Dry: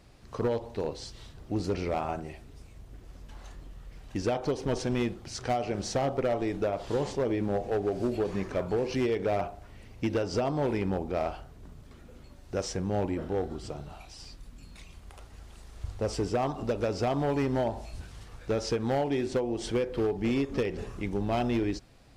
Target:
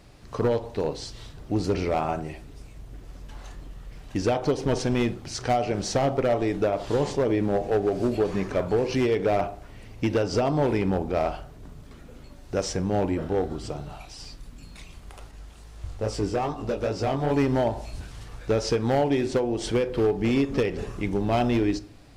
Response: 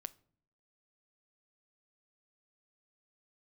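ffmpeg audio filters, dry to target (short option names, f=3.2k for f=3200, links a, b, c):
-filter_complex "[0:a]asettb=1/sr,asplit=3[a][b][c];[a]atrim=end=15.314[d];[b]atrim=start=15.31:end=17.31,asetpts=PTS-STARTPTS,afade=t=in:d=0.004:c=qsin,afade=t=out:st=1.996:d=0.004:c=qsin,flanger=delay=17.5:depth=5.2:speed=2.4[e];[c]atrim=start=17.306[f];[d][e]acrossfade=d=0.004:c1=hsin:c2=qsin[g];[g][f]acrossfade=d=0.004:c1=qsin:c2=hsin[h];[1:a]atrim=start_sample=2205[i];[h][i]afir=irnorm=-1:irlink=0,volume=9dB"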